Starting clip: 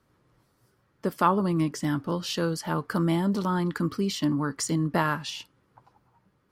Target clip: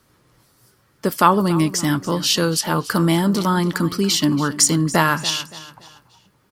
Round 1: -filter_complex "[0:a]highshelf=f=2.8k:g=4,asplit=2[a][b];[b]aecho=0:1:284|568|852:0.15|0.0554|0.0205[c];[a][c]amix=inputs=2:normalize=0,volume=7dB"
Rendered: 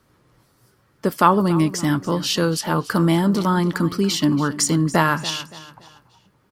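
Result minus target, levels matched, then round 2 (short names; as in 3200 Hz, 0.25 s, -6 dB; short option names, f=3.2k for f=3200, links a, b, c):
4000 Hz band -3.0 dB
-filter_complex "[0:a]highshelf=f=2.8k:g=10.5,asplit=2[a][b];[b]aecho=0:1:284|568|852:0.15|0.0554|0.0205[c];[a][c]amix=inputs=2:normalize=0,volume=7dB"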